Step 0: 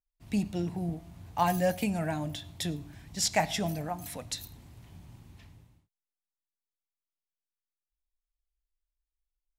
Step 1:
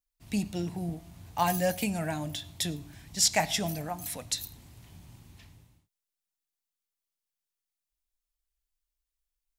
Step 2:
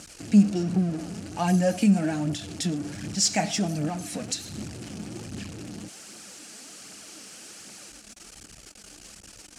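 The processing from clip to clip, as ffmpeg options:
-af "highshelf=f=2800:g=7.5,volume=0.891"
-af "aeval=exprs='val(0)+0.5*0.0251*sgn(val(0))':c=same,highpass=120,equalizer=f=200:t=q:w=4:g=9,equalizer=f=310:t=q:w=4:g=7,equalizer=f=1000:t=q:w=4:g=-10,equalizer=f=2000:t=q:w=4:g=-5,equalizer=f=3600:t=q:w=4:g=-8,lowpass=f=8700:w=0.5412,lowpass=f=8700:w=1.3066,aphaser=in_gain=1:out_gain=1:delay=4.9:decay=0.4:speed=1.3:type=triangular"

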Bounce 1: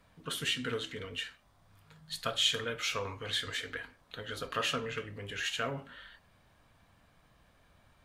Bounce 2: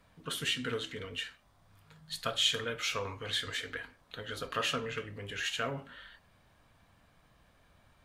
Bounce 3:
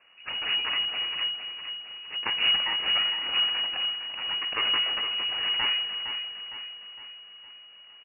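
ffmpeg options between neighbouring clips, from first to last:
-af anull
-af "aeval=exprs='abs(val(0))':c=same,aecho=1:1:460|920|1380|1840|2300|2760:0.355|0.174|0.0852|0.0417|0.0205|0.01,lowpass=f=2500:t=q:w=0.5098,lowpass=f=2500:t=q:w=0.6013,lowpass=f=2500:t=q:w=0.9,lowpass=f=2500:t=q:w=2.563,afreqshift=-2900,volume=2.24"

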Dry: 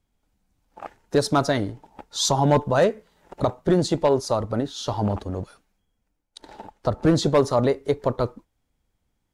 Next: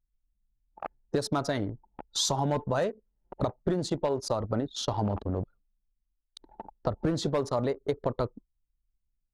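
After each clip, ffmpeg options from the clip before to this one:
-af "anlmdn=6.31,acompressor=threshold=0.0562:ratio=6"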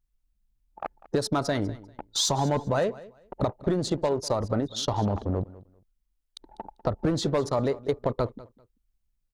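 -filter_complex "[0:a]asplit=2[s0][s1];[s1]asoftclip=type=tanh:threshold=0.0376,volume=0.398[s2];[s0][s2]amix=inputs=2:normalize=0,aecho=1:1:197|394:0.106|0.0222,volume=1.12"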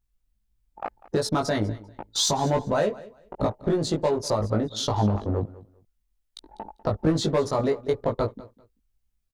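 -filter_complex "[0:a]asplit=2[s0][s1];[s1]adelay=19,volume=0.75[s2];[s0][s2]amix=inputs=2:normalize=0"

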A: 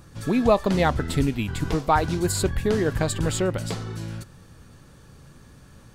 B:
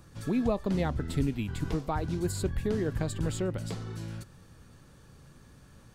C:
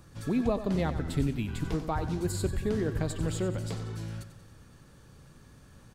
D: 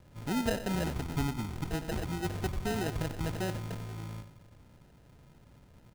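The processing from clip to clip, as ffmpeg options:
-filter_complex "[0:a]acrossover=split=410[s0][s1];[s1]acompressor=threshold=0.00794:ratio=1.5[s2];[s0][s2]amix=inputs=2:normalize=0,volume=0.531"
-af "aecho=1:1:92|184|276|368|460|552:0.251|0.133|0.0706|0.0374|0.0198|0.0105"
-af "acrusher=samples=39:mix=1:aa=0.000001,volume=0.668"

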